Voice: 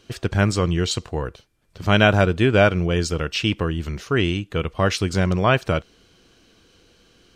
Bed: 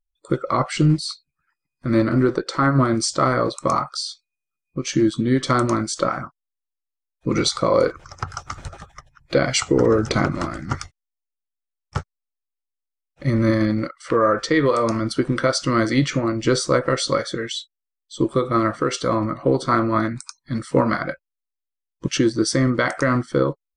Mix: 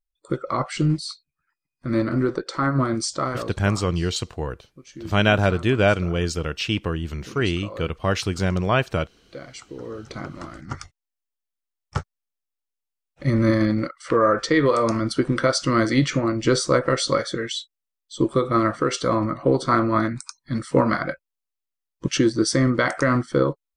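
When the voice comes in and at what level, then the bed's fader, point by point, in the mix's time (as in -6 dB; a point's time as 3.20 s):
3.25 s, -2.5 dB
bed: 3.11 s -4 dB
3.89 s -20 dB
9.75 s -20 dB
11.19 s -0.5 dB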